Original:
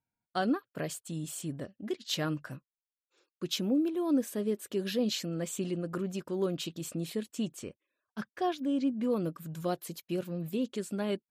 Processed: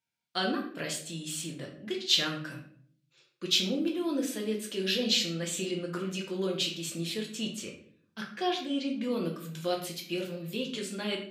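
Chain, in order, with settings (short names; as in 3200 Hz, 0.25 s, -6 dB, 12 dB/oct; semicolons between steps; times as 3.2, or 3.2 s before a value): weighting filter D; shoebox room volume 74 m³, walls mixed, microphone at 0.78 m; gain -3.5 dB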